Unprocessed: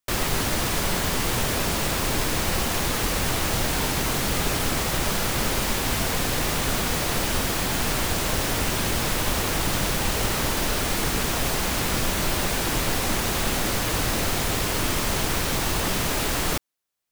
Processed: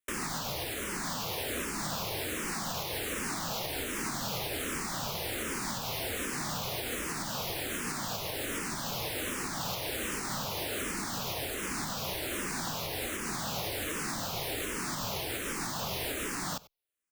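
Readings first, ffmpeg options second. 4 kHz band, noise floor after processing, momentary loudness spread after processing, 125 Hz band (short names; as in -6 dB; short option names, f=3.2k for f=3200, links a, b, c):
-9.5 dB, -37 dBFS, 1 LU, -13.5 dB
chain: -filter_complex "[0:a]afftfilt=real='re*lt(hypot(re,im),0.316)':imag='im*lt(hypot(re,im),0.316)':win_size=1024:overlap=0.75,acrossover=split=110[a][b];[a]asoftclip=type=tanh:threshold=-32dB[c];[c][b]amix=inputs=2:normalize=0,aecho=1:1:93:0.0841,alimiter=limit=-18dB:level=0:latency=1:release=262,asplit=2[d][e];[e]afreqshift=-1.3[f];[d][f]amix=inputs=2:normalize=1,volume=-3.5dB"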